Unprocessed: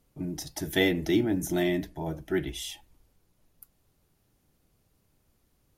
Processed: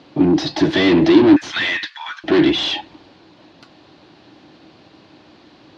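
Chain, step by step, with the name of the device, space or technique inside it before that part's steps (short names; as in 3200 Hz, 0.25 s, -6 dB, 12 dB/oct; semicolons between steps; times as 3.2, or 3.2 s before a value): 1.36–2.24 steep high-pass 1200 Hz 48 dB/oct; overdrive pedal into a guitar cabinet (overdrive pedal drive 35 dB, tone 2600 Hz, clips at -11.5 dBFS; speaker cabinet 84–4500 Hz, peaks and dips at 310 Hz +10 dB, 450 Hz -5 dB, 1300 Hz -5 dB, 2100 Hz -4 dB, 4200 Hz +5 dB); gain +3.5 dB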